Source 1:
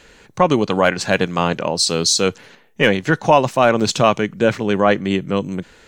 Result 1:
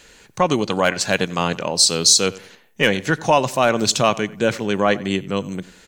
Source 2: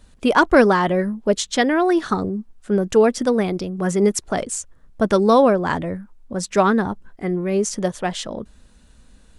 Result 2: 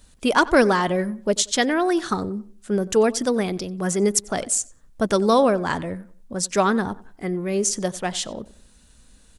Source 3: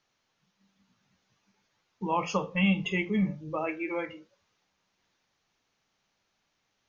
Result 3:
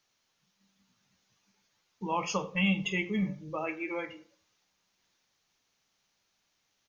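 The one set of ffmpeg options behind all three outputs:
-filter_complex "[0:a]highshelf=f=3900:g=10.5,asplit=2[s0][s1];[s1]adelay=92,lowpass=f=3200:p=1,volume=0.112,asplit=2[s2][s3];[s3]adelay=92,lowpass=f=3200:p=1,volume=0.34,asplit=2[s4][s5];[s5]adelay=92,lowpass=f=3200:p=1,volume=0.34[s6];[s2][s4][s6]amix=inputs=3:normalize=0[s7];[s0][s7]amix=inputs=2:normalize=0,volume=0.668"

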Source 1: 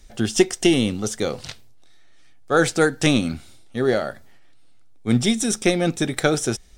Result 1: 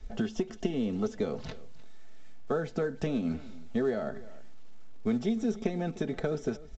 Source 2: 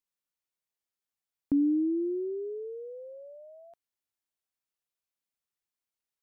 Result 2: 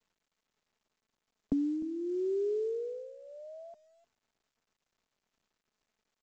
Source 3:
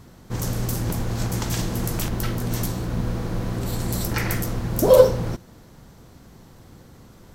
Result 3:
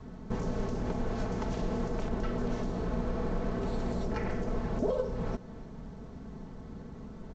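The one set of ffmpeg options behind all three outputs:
-filter_complex "[0:a]acrossover=split=340|750[s0][s1][s2];[s0]acompressor=threshold=0.0251:ratio=4[s3];[s1]acompressor=threshold=0.0251:ratio=4[s4];[s2]acompressor=threshold=0.02:ratio=4[s5];[s3][s4][s5]amix=inputs=3:normalize=0,adynamicequalizer=threshold=0.00891:dfrequency=190:dqfactor=2.3:tfrequency=190:tqfactor=2.3:attack=5:release=100:ratio=0.375:range=1.5:mode=cutabove:tftype=bell,acompressor=threshold=0.0251:ratio=2,lowpass=f=1600:p=1,tiltshelf=f=920:g=3,aecho=1:1:4.6:0.58,aecho=1:1:303:0.112" -ar 16000 -c:a pcm_mulaw

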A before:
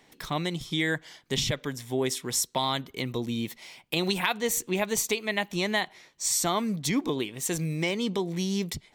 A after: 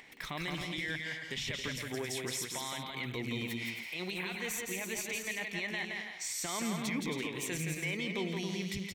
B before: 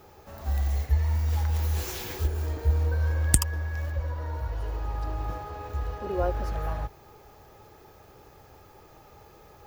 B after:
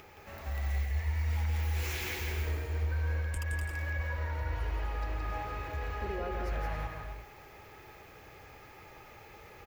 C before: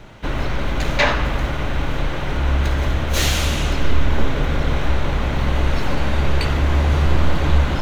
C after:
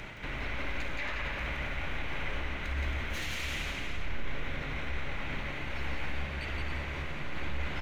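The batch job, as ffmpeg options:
-af "equalizer=f=2200:w=1.5:g=12.5,areverse,acompressor=threshold=0.0501:ratio=6,areverse,alimiter=level_in=1.06:limit=0.0631:level=0:latency=1:release=56,volume=0.944,acompressor=mode=upward:threshold=0.00398:ratio=2.5,aecho=1:1:170|272|333.2|369.9|392:0.631|0.398|0.251|0.158|0.1,volume=0.631"

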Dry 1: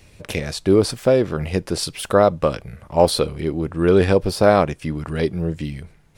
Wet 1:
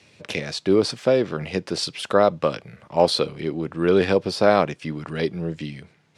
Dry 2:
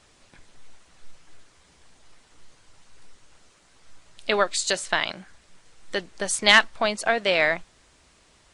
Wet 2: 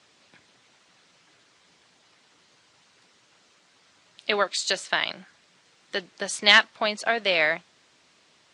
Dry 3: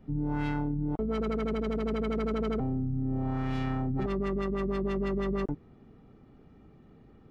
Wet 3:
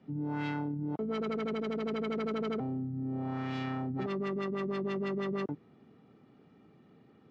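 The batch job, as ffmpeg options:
-filter_complex "[0:a]lowpass=4700,highshelf=f=2900:g=8.5,acrossover=split=110|690[s0][s1][s2];[s0]acrusher=bits=2:mix=0:aa=0.5[s3];[s3][s1][s2]amix=inputs=3:normalize=0,volume=0.708"

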